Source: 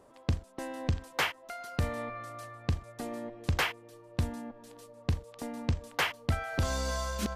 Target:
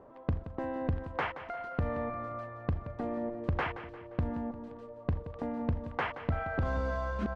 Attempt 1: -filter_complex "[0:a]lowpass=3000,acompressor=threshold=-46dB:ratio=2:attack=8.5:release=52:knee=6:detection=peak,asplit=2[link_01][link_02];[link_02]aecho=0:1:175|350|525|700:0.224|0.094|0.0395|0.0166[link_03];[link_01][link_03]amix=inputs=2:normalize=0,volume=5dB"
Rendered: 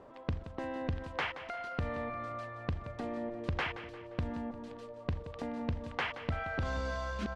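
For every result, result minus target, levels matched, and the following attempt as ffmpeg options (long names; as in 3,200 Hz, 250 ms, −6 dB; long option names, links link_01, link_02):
4,000 Hz band +8.5 dB; downward compressor: peak gain reduction +4 dB
-filter_complex "[0:a]lowpass=1400,acompressor=threshold=-46dB:ratio=2:attack=8.5:release=52:knee=6:detection=peak,asplit=2[link_01][link_02];[link_02]aecho=0:1:175|350|525|700:0.224|0.094|0.0395|0.0166[link_03];[link_01][link_03]amix=inputs=2:normalize=0,volume=5dB"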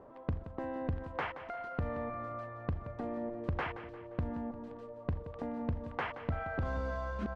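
downward compressor: peak gain reduction +3.5 dB
-filter_complex "[0:a]lowpass=1400,acompressor=threshold=-38.5dB:ratio=2:attack=8.5:release=52:knee=6:detection=peak,asplit=2[link_01][link_02];[link_02]aecho=0:1:175|350|525|700:0.224|0.094|0.0395|0.0166[link_03];[link_01][link_03]amix=inputs=2:normalize=0,volume=5dB"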